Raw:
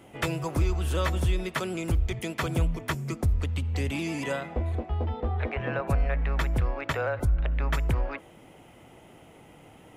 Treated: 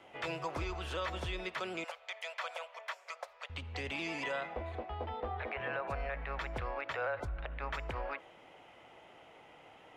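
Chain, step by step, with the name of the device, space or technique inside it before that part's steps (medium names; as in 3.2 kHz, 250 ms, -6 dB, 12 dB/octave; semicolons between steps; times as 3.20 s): DJ mixer with the lows and highs turned down (three-band isolator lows -15 dB, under 470 Hz, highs -21 dB, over 5.5 kHz; peak limiter -26.5 dBFS, peak gain reduction 9.5 dB); 1.84–3.50 s: elliptic high-pass 550 Hz, stop band 50 dB; trim -1 dB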